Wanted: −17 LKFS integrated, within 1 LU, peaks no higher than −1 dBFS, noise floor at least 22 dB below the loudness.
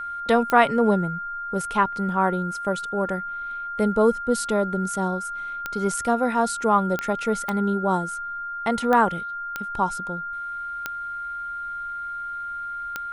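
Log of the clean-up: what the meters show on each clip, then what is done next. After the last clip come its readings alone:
number of clicks 8; interfering tone 1,400 Hz; level of the tone −29 dBFS; integrated loudness −24.5 LKFS; sample peak −4.0 dBFS; target loudness −17.0 LKFS
→ click removal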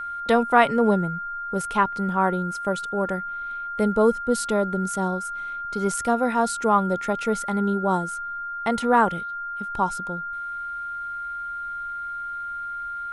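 number of clicks 0; interfering tone 1,400 Hz; level of the tone −29 dBFS
→ notch filter 1,400 Hz, Q 30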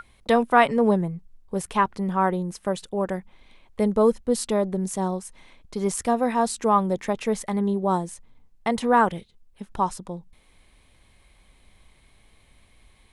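interfering tone none found; integrated loudness −24.0 LKFS; sample peak −5.0 dBFS; target loudness −17.0 LKFS
→ level +7 dB
brickwall limiter −1 dBFS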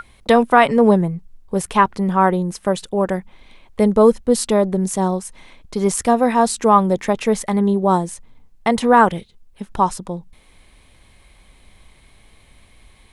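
integrated loudness −17.5 LKFS; sample peak −1.0 dBFS; background noise floor −52 dBFS

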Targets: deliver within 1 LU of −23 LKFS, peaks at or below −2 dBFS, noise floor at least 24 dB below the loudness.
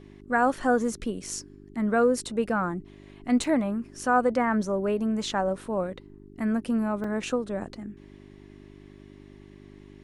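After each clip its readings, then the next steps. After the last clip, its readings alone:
number of dropouts 2; longest dropout 3.2 ms; mains hum 50 Hz; hum harmonics up to 400 Hz; level of the hum −48 dBFS; integrated loudness −27.0 LKFS; sample peak −10.5 dBFS; target loudness −23.0 LKFS
→ repair the gap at 0:03.44/0:07.04, 3.2 ms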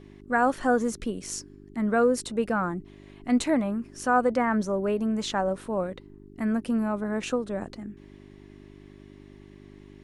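number of dropouts 0; mains hum 50 Hz; hum harmonics up to 400 Hz; level of the hum −48 dBFS
→ hum removal 50 Hz, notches 8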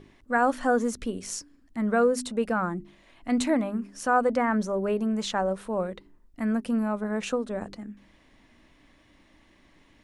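mains hum none found; integrated loudness −27.5 LKFS; sample peak −11.5 dBFS; target loudness −23.0 LKFS
→ level +4.5 dB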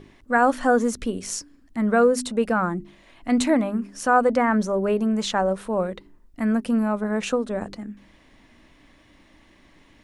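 integrated loudness −23.0 LKFS; sample peak −7.0 dBFS; background noise floor −56 dBFS

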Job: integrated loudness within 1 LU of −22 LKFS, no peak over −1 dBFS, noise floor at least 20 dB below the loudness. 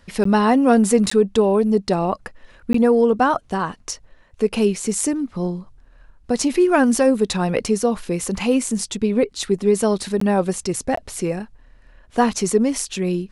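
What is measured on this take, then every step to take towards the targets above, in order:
number of dropouts 5; longest dropout 14 ms; integrated loudness −19.5 LKFS; sample peak −3.0 dBFS; target loudness −22.0 LKFS
→ repair the gap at 0:00.24/0:01.10/0:02.73/0:10.20/0:10.96, 14 ms
level −2.5 dB

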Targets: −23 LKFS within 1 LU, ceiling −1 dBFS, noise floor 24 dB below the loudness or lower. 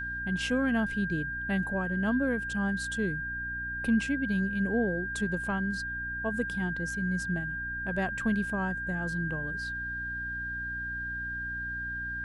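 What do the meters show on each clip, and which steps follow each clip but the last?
mains hum 60 Hz; hum harmonics up to 300 Hz; level of the hum −41 dBFS; interfering tone 1,600 Hz; level of the tone −33 dBFS; integrated loudness −31.0 LKFS; sample peak −17.0 dBFS; target loudness −23.0 LKFS
→ hum removal 60 Hz, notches 5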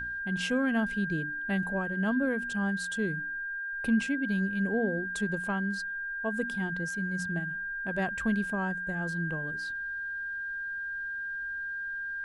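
mains hum none found; interfering tone 1,600 Hz; level of the tone −33 dBFS
→ notch filter 1,600 Hz, Q 30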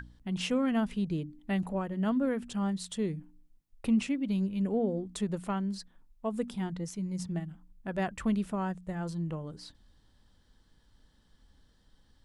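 interfering tone none found; integrated loudness −33.0 LKFS; sample peak −18.5 dBFS; target loudness −23.0 LKFS
→ level +10 dB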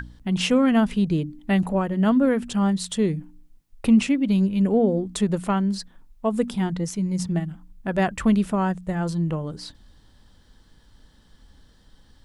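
integrated loudness −23.0 LKFS; sample peak −8.5 dBFS; background noise floor −56 dBFS

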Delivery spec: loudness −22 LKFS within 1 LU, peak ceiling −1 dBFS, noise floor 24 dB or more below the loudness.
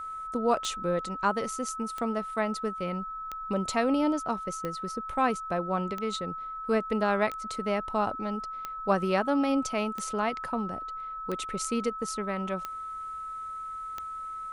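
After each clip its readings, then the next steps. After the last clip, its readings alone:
number of clicks 11; interfering tone 1,300 Hz; level of the tone −35 dBFS; integrated loudness −30.5 LKFS; sample peak −12.5 dBFS; target loudness −22.0 LKFS
→ click removal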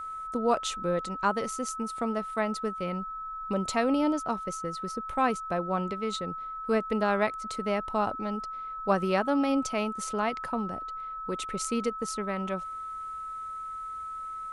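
number of clicks 0; interfering tone 1,300 Hz; level of the tone −35 dBFS
→ notch filter 1,300 Hz, Q 30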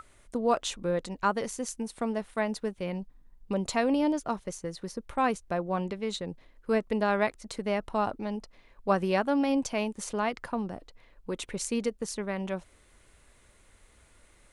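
interfering tone none found; integrated loudness −31.0 LKFS; sample peak −12.5 dBFS; target loudness −22.0 LKFS
→ level +9 dB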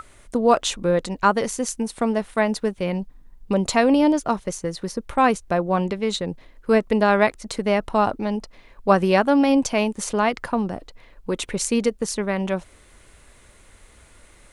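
integrated loudness −22.0 LKFS; sample peak −3.5 dBFS; background noise floor −52 dBFS

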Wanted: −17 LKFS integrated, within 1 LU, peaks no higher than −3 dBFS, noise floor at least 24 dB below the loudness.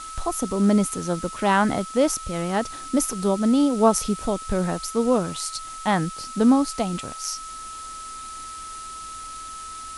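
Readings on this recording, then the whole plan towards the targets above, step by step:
interfering tone 1,300 Hz; level of the tone −35 dBFS; background noise floor −37 dBFS; target noise floor −47 dBFS; integrated loudness −23.0 LKFS; sample peak −4.5 dBFS; target loudness −17.0 LKFS
→ notch filter 1,300 Hz, Q 30
noise reduction from a noise print 10 dB
level +6 dB
brickwall limiter −3 dBFS

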